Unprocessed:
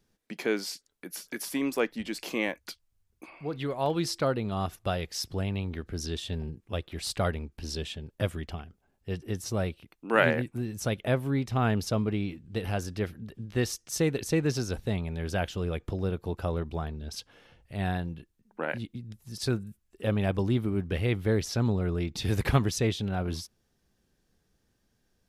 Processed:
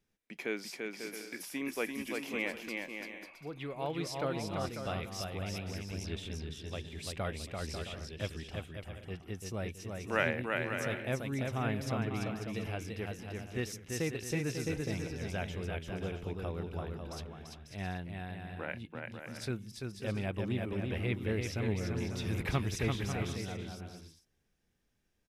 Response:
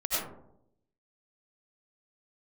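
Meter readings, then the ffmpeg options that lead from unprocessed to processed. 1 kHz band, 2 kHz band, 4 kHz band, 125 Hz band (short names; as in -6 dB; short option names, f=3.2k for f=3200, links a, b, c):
-6.5 dB, -3.5 dB, -6.0 dB, -6.5 dB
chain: -filter_complex "[0:a]equalizer=f=2.3k:t=o:w=0.6:g=6.5,bandreject=f=4.4k:w=13,asplit=2[a][b];[b]aecho=0:1:340|544|666.4|739.8|783.9:0.631|0.398|0.251|0.158|0.1[c];[a][c]amix=inputs=2:normalize=0,volume=-9dB"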